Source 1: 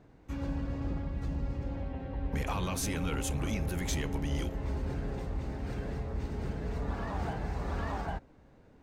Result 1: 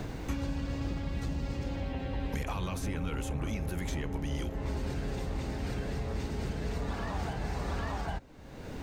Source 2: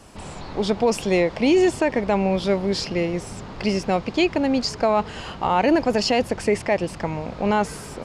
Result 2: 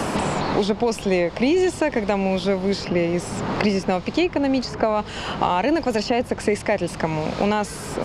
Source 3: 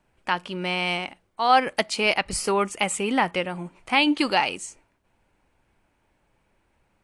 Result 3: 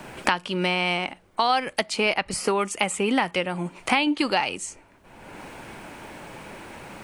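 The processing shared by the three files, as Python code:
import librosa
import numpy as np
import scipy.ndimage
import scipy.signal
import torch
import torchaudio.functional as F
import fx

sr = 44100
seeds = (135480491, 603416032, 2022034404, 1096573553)

y = fx.band_squash(x, sr, depth_pct=100)
y = y * 10.0 ** (-1.0 / 20.0)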